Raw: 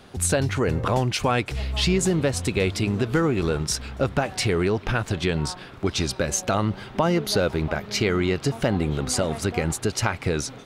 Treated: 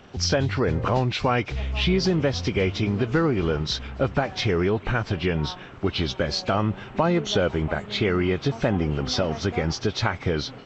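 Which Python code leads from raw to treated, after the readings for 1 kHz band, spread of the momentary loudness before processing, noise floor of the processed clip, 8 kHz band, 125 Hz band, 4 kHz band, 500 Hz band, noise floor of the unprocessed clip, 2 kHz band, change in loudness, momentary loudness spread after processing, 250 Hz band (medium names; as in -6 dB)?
0.0 dB, 4 LU, -42 dBFS, -9.5 dB, 0.0 dB, +1.0 dB, 0.0 dB, -42 dBFS, -0.5 dB, -0.5 dB, 4 LU, 0.0 dB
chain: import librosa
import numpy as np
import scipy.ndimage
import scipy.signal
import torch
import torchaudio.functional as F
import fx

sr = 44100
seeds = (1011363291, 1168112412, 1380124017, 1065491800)

y = fx.freq_compress(x, sr, knee_hz=2000.0, ratio=1.5)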